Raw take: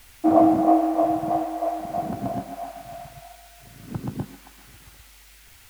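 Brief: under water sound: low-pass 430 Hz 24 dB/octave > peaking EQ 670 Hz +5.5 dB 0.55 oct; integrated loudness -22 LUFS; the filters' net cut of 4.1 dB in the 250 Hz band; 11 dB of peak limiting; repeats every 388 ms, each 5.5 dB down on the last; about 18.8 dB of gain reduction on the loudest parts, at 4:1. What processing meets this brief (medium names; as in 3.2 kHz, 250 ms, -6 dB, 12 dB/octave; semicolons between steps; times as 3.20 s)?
peaking EQ 250 Hz -6 dB; compression 4:1, threshold -36 dBFS; peak limiter -34.5 dBFS; low-pass 430 Hz 24 dB/octave; peaking EQ 670 Hz +5.5 dB 0.55 oct; feedback delay 388 ms, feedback 53%, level -5.5 dB; trim +27 dB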